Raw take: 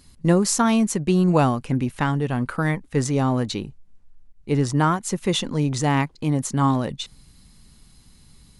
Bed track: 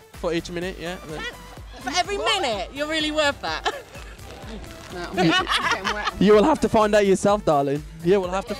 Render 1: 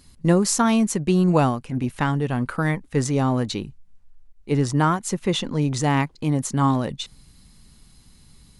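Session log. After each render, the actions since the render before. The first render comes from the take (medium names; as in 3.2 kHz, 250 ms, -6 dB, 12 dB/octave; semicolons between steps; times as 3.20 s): 1.39–1.84 s: transient shaper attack -10 dB, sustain -4 dB; 3.62–4.50 s: peaking EQ 670 Hz -> 120 Hz -11 dB 1.1 oct; 5.14–5.61 s: treble shelf 5.6 kHz -> 8.9 kHz -8.5 dB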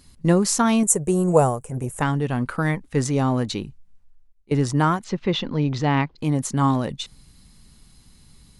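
0.83–2.02 s: FFT filter 140 Hz 0 dB, 270 Hz -9 dB, 450 Hz +7 dB, 2.4 kHz -9 dB, 4.4 kHz -14 dB, 7.7 kHz +14 dB, 11 kHz +11 dB; 3.57–4.51 s: fade out equal-power, to -18.5 dB; 5.04–6.18 s: low-pass 4.8 kHz 24 dB/octave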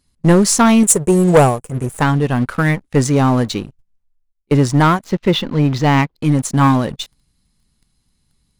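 waveshaping leveller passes 3; upward expansion 1.5:1, over -19 dBFS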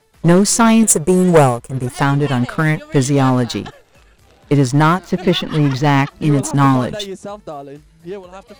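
add bed track -10.5 dB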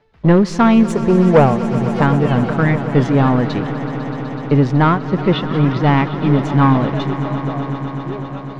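distance through air 260 m; echo with a slow build-up 125 ms, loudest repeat 5, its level -16 dB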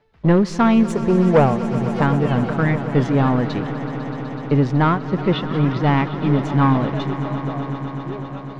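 trim -3.5 dB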